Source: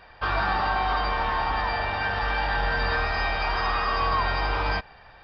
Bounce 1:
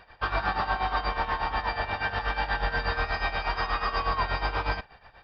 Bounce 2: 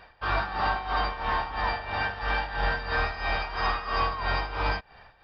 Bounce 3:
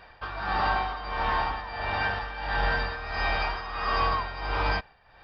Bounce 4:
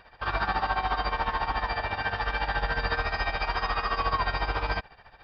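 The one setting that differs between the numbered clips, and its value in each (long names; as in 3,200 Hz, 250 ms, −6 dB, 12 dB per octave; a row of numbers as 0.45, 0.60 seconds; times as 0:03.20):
amplitude tremolo, speed: 8.3, 3, 1.5, 14 Hertz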